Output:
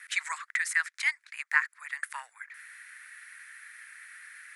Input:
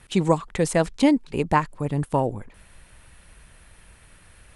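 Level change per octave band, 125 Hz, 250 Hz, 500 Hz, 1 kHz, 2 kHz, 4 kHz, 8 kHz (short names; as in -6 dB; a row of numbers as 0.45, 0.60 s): under -40 dB, under -40 dB, under -40 dB, -14.0 dB, +6.5 dB, -4.5 dB, -3.0 dB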